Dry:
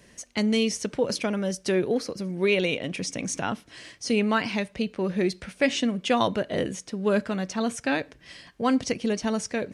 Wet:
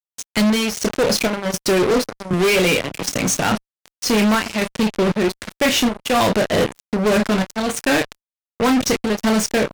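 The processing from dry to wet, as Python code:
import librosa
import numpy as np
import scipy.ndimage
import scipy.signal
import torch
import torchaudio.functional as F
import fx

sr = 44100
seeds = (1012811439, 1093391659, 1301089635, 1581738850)

y = fx.room_early_taps(x, sr, ms=(28, 52), db=(-7.5, -18.0))
y = fx.power_curve(y, sr, exponent=1.4)
y = fx.chopper(y, sr, hz=1.3, depth_pct=65, duty_pct=65)
y = fx.fuzz(y, sr, gain_db=38.0, gate_db=-45.0)
y = fx.band_squash(y, sr, depth_pct=40, at=(2.33, 3.09))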